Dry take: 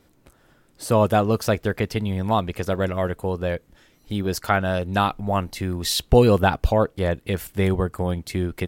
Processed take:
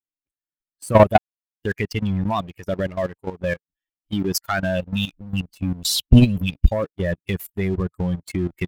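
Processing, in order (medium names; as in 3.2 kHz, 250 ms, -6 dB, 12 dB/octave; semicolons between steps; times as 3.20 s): expander on every frequency bin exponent 2; 3.01–3.41 s: bass shelf 140 Hz -5 dB; 4.81–6.72 s: spectral selection erased 300–2200 Hz; waveshaping leveller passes 2; 1.18–1.62 s: mute; level held to a coarse grid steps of 14 dB; trim +6.5 dB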